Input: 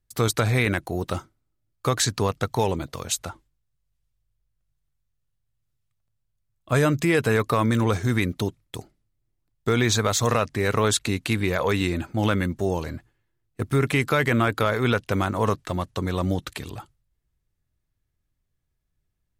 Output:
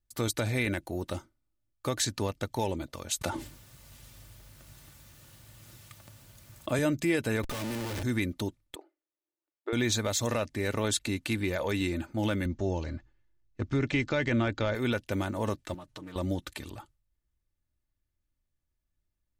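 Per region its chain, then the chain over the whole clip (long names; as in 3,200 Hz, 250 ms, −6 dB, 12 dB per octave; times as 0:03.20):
0:03.21–0:06.79: high-pass filter 110 Hz + envelope flattener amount 70%
0:07.43–0:08.03: tuned comb filter 53 Hz, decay 1.2 s, mix 50% + comparator with hysteresis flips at −45 dBFS
0:08.75–0:09.73: linear-phase brick-wall high-pass 290 Hz + high-frequency loss of the air 430 metres
0:12.45–0:14.75: Butterworth low-pass 6,900 Hz 48 dB per octave + low-shelf EQ 75 Hz +11 dB
0:15.74–0:16.16: comb filter 6.6 ms, depth 89% + downward compressor 4 to 1, threshold −36 dBFS + highs frequency-modulated by the lows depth 0.32 ms
whole clip: comb filter 3.4 ms, depth 40%; dynamic equaliser 1,200 Hz, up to −7 dB, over −39 dBFS, Q 1.9; level −6.5 dB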